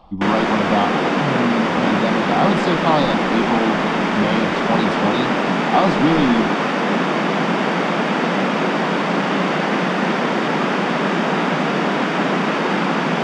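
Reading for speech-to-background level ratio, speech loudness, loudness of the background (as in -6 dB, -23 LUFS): -3.0 dB, -21.5 LUFS, -18.5 LUFS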